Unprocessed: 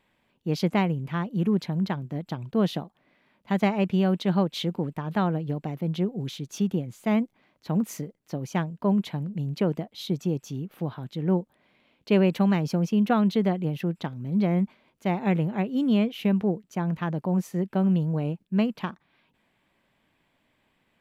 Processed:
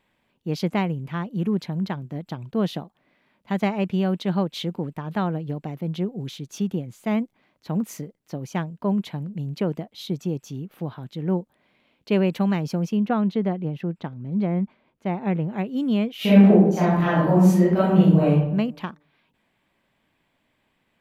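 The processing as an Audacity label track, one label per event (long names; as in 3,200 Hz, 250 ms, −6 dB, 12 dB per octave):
12.970000	15.510000	low-pass filter 1,900 Hz 6 dB per octave
16.160000	18.300000	thrown reverb, RT60 0.81 s, DRR −11 dB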